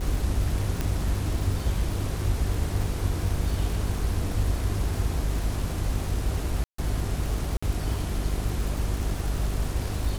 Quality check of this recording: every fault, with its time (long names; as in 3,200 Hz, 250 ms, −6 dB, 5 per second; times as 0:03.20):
surface crackle 220 per second −32 dBFS
mains hum 50 Hz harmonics 8 −31 dBFS
0:00.81: click −13 dBFS
0:06.64–0:06.78: drop-out 144 ms
0:07.57–0:07.62: drop-out 55 ms